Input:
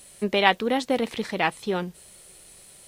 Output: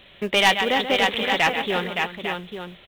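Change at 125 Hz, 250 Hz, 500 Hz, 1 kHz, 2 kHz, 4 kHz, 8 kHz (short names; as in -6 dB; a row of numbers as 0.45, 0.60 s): +1.0, -1.0, +1.5, +3.5, +6.5, +8.5, +5.5 dB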